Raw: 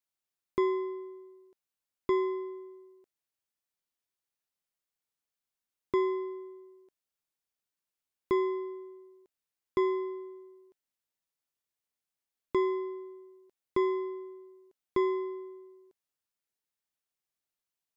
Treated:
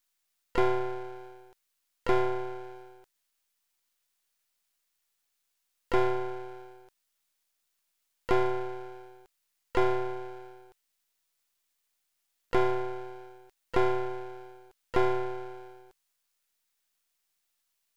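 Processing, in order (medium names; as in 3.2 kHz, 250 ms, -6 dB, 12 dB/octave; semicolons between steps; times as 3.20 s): harmony voices +5 st -11 dB; half-wave rectifier; tape noise reduction on one side only encoder only; trim +6 dB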